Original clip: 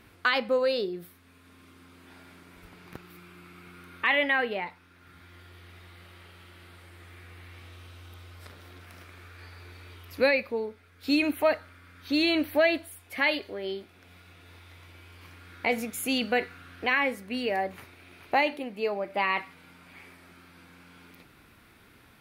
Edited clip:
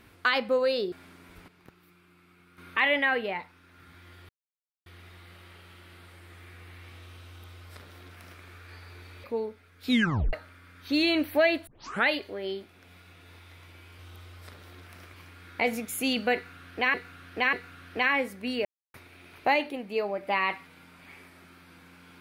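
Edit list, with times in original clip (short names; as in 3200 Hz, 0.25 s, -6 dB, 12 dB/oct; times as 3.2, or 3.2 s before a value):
0.92–2.19 cut
2.75–3.85 gain -10 dB
5.56 insert silence 0.57 s
7.97–9.12 copy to 15.19
9.94–10.44 cut
11.07 tape stop 0.46 s
12.87 tape start 0.42 s
16.4–16.99 loop, 3 plays
17.52–17.81 mute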